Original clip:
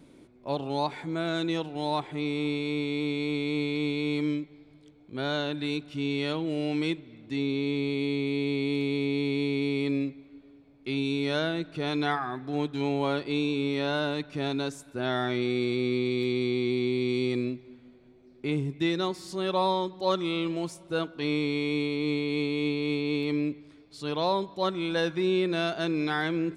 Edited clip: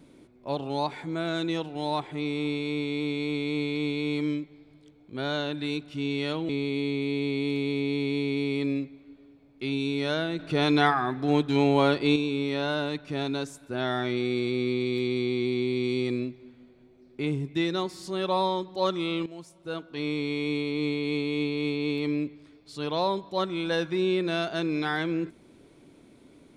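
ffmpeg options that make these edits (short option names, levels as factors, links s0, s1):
-filter_complex "[0:a]asplit=5[s0][s1][s2][s3][s4];[s0]atrim=end=6.492[s5];[s1]atrim=start=7.738:end=11.642[s6];[s2]atrim=start=11.638:end=13.412,asetpts=PTS-STARTPTS,volume=2[s7];[s3]atrim=start=13.408:end=20.51,asetpts=PTS-STARTPTS,afade=t=out:st=7.098:d=0.004:c=hsin:silence=0.211349[s8];[s4]atrim=start=20.51,asetpts=PTS-STARTPTS,afade=t=in:d=1.63:c=qsin:silence=0.211349[s9];[s5][s6]acrossfade=d=0.004:c1=hsin:c2=hsin[s10];[s10][s7]acrossfade=d=0.004:c1=hsin:c2=hsin[s11];[s8][s9]concat=n=2:v=0:a=1[s12];[s11][s12]acrossfade=d=0.004:c1=hsin:c2=hsin"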